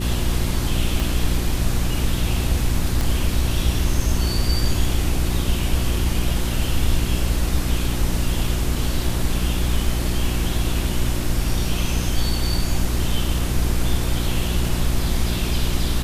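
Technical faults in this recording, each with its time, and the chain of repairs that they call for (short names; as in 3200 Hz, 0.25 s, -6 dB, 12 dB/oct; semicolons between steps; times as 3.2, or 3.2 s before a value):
hum 60 Hz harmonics 6 -24 dBFS
1 pop
3.01 pop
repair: de-click; de-hum 60 Hz, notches 6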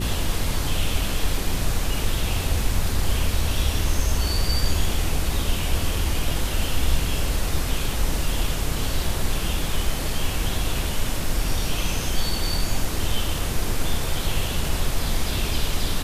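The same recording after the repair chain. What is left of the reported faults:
1 pop
3.01 pop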